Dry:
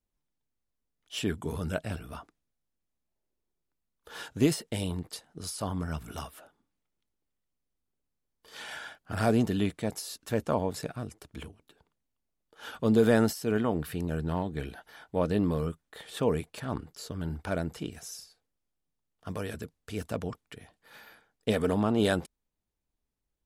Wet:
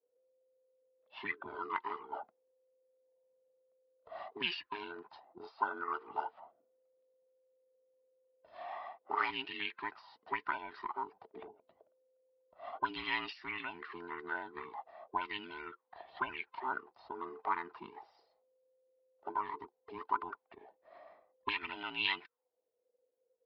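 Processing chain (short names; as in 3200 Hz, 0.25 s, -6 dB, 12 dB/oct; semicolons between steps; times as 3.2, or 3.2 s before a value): band inversion scrambler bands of 500 Hz; auto-wah 570–2700 Hz, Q 5.2, up, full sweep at -23 dBFS; downsampling 11025 Hz; gain +9.5 dB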